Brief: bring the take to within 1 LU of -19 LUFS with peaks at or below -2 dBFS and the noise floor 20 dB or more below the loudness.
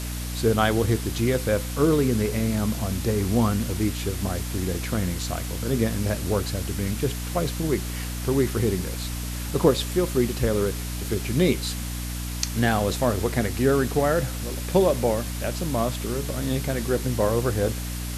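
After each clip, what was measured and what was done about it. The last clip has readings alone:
hum 60 Hz; harmonics up to 300 Hz; hum level -29 dBFS; noise floor -31 dBFS; noise floor target -45 dBFS; loudness -25.0 LUFS; peak -5.0 dBFS; loudness target -19.0 LUFS
-> notches 60/120/180/240/300 Hz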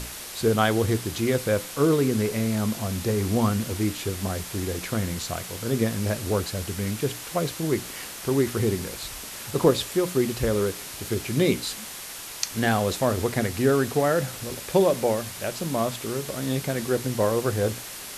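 hum none; noise floor -38 dBFS; noise floor target -46 dBFS
-> noise print and reduce 8 dB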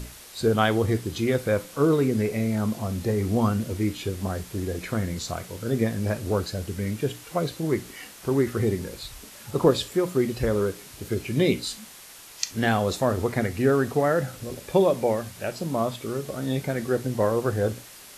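noise floor -46 dBFS; loudness -26.0 LUFS; peak -5.5 dBFS; loudness target -19.0 LUFS
-> gain +7 dB; limiter -2 dBFS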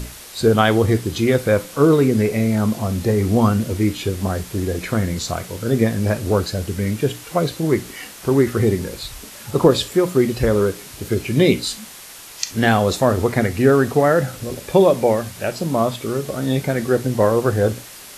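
loudness -19.0 LUFS; peak -2.0 dBFS; noise floor -39 dBFS

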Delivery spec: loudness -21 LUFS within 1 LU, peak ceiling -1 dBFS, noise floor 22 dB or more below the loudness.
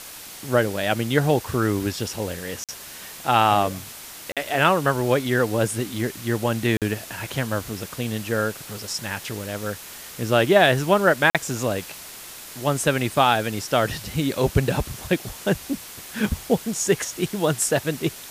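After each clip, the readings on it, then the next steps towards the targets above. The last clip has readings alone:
dropouts 4; longest dropout 47 ms; noise floor -40 dBFS; noise floor target -45 dBFS; loudness -23.0 LUFS; peak -2.5 dBFS; loudness target -21.0 LUFS
-> interpolate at 2.64/4.32/6.77/11.3, 47 ms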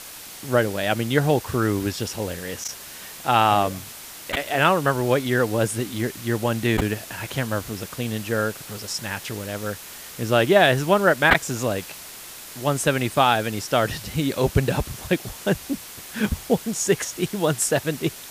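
dropouts 0; noise floor -40 dBFS; noise floor target -45 dBFS
-> denoiser 6 dB, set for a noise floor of -40 dBFS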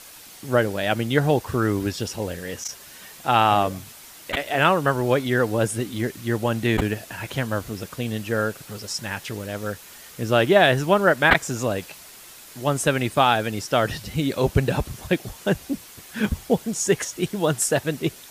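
noise floor -45 dBFS; loudness -23.0 LUFS; peak -1.5 dBFS; loudness target -21.0 LUFS
-> gain +2 dB; limiter -1 dBFS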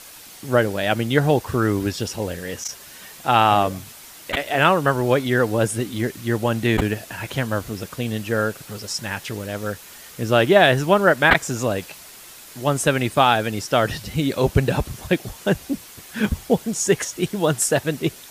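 loudness -21.0 LUFS; peak -1.0 dBFS; noise floor -43 dBFS

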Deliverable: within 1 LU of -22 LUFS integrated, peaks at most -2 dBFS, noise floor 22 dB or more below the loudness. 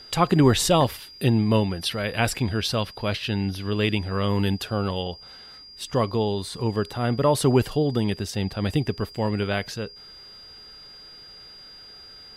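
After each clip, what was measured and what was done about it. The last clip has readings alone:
steady tone 4800 Hz; tone level -43 dBFS; loudness -24.0 LUFS; peak -6.0 dBFS; loudness target -22.0 LUFS
-> notch 4800 Hz, Q 30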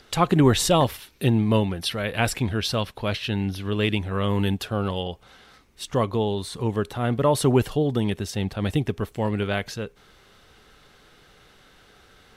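steady tone none; loudness -24.0 LUFS; peak -6.0 dBFS; loudness target -22.0 LUFS
-> gain +2 dB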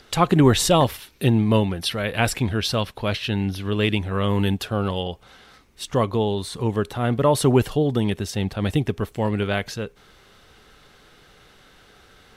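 loudness -22.0 LUFS; peak -4.0 dBFS; noise floor -53 dBFS

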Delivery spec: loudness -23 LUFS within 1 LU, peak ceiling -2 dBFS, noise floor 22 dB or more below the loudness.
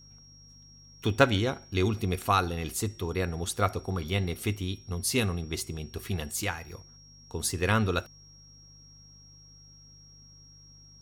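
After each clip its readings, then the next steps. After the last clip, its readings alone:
hum 50 Hz; harmonics up to 150 Hz; hum level -55 dBFS; steady tone 5600 Hz; tone level -53 dBFS; loudness -29.5 LUFS; peak -5.0 dBFS; loudness target -23.0 LUFS
-> de-hum 50 Hz, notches 3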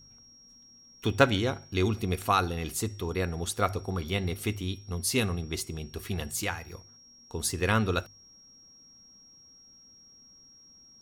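hum none; steady tone 5600 Hz; tone level -53 dBFS
-> notch 5600 Hz, Q 30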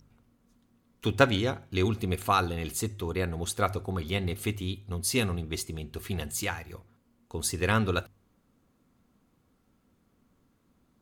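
steady tone none; loudness -30.0 LUFS; peak -5.5 dBFS; loudness target -23.0 LUFS
-> gain +7 dB; limiter -2 dBFS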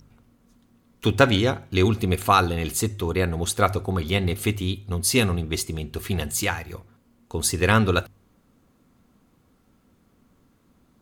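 loudness -23.0 LUFS; peak -2.0 dBFS; noise floor -63 dBFS

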